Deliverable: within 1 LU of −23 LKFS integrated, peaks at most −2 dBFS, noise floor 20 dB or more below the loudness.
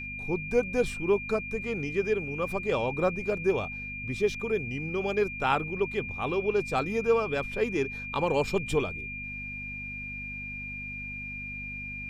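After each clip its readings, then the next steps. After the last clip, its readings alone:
mains hum 50 Hz; hum harmonics up to 250 Hz; level of the hum −41 dBFS; interfering tone 2,400 Hz; level of the tone −36 dBFS; integrated loudness −30.0 LKFS; sample peak −12.0 dBFS; target loudness −23.0 LKFS
→ hum removal 50 Hz, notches 5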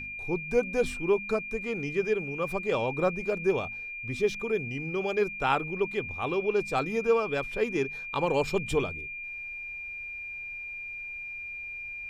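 mains hum none found; interfering tone 2,400 Hz; level of the tone −36 dBFS
→ notch filter 2,400 Hz, Q 30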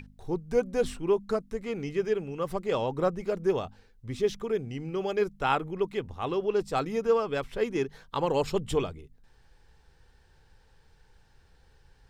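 interfering tone none found; integrated loudness −30.0 LKFS; sample peak −12.5 dBFS; target loudness −23.0 LKFS
→ level +7 dB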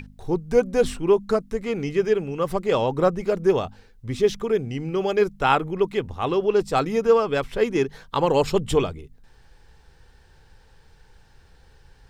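integrated loudness −23.0 LKFS; sample peak −5.5 dBFS; background noise floor −54 dBFS

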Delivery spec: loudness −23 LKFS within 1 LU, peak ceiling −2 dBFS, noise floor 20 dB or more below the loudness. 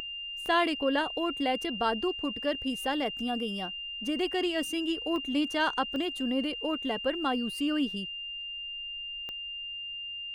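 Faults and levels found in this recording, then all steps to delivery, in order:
number of clicks 5; interfering tone 2,800 Hz; level of the tone −36 dBFS; integrated loudness −31.0 LKFS; sample peak −14.5 dBFS; target loudness −23.0 LKFS
→ click removal
notch filter 2,800 Hz, Q 30
level +8 dB

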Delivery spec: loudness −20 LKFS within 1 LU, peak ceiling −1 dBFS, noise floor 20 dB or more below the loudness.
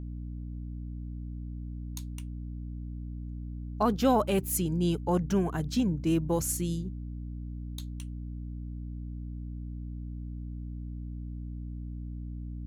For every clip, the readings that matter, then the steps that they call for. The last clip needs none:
mains hum 60 Hz; hum harmonics up to 300 Hz; level of the hum −35 dBFS; integrated loudness −33.5 LKFS; sample peak −13.5 dBFS; target loudness −20.0 LKFS
→ mains-hum notches 60/120/180/240/300 Hz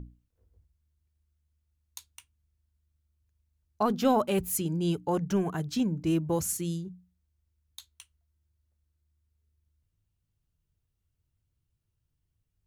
mains hum none found; integrated loudness −29.0 LKFS; sample peak −14.0 dBFS; target loudness −20.0 LKFS
→ level +9 dB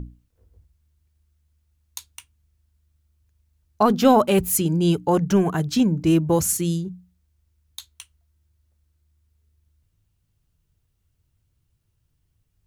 integrated loudness −20.0 LKFS; sample peak −5.0 dBFS; background noise floor −71 dBFS

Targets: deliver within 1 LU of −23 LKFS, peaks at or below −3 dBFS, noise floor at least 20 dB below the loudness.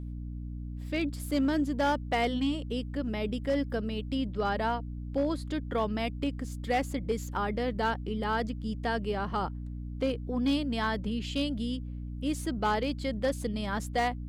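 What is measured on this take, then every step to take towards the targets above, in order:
share of clipped samples 0.4%; peaks flattened at −21.0 dBFS; mains hum 60 Hz; hum harmonics up to 300 Hz; level of the hum −35 dBFS; integrated loudness −31.5 LKFS; sample peak −21.0 dBFS; target loudness −23.0 LKFS
→ clipped peaks rebuilt −21 dBFS
mains-hum notches 60/120/180/240/300 Hz
level +8.5 dB

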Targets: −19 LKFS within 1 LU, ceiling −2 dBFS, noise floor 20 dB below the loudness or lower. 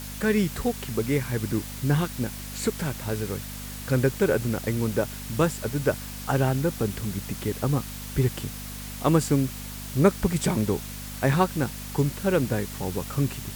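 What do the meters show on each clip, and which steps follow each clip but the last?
mains hum 50 Hz; hum harmonics up to 250 Hz; level of the hum −37 dBFS; background noise floor −37 dBFS; target noise floor −47 dBFS; integrated loudness −26.5 LKFS; sample peak −6.0 dBFS; target loudness −19.0 LKFS
→ hum removal 50 Hz, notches 5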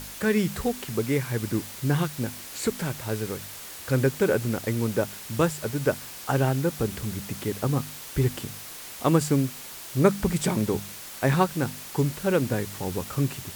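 mains hum none found; background noise floor −41 dBFS; target noise floor −47 dBFS
→ noise reduction from a noise print 6 dB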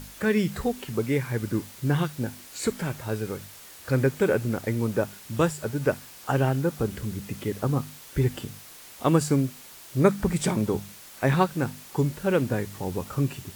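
background noise floor −47 dBFS; integrated loudness −27.0 LKFS; sample peak −6.0 dBFS; target loudness −19.0 LKFS
→ level +8 dB
brickwall limiter −2 dBFS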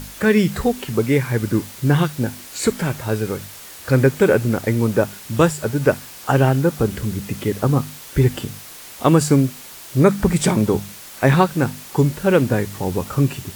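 integrated loudness −19.0 LKFS; sample peak −2.0 dBFS; background noise floor −39 dBFS

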